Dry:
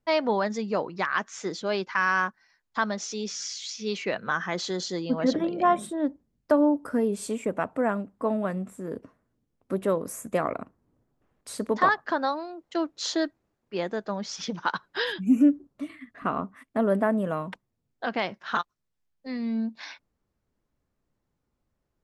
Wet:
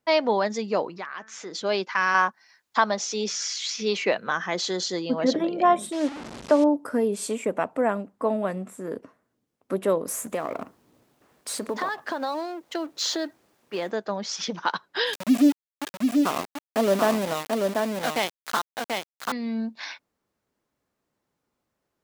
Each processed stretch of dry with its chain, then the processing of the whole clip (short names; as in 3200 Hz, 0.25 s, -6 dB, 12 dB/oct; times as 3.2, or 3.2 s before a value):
0.97–1.55 high shelf 6100 Hz -8 dB + compressor 2:1, threshold -42 dBFS + de-hum 219.8 Hz, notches 11
2.14–4.13 dynamic EQ 910 Hz, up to +7 dB, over -38 dBFS, Q 0.92 + three-band squash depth 40%
5.92–6.64 delta modulation 64 kbps, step -32 dBFS + air absorption 83 m
10.08–13.91 G.711 law mismatch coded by mu + compressor 4:1, threshold -27 dBFS
15.13–19.32 sample gate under -29 dBFS + echo 0.737 s -3.5 dB
whole clip: dynamic EQ 1400 Hz, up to -5 dB, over -40 dBFS, Q 1.5; HPF 360 Hz 6 dB/oct; gain +5 dB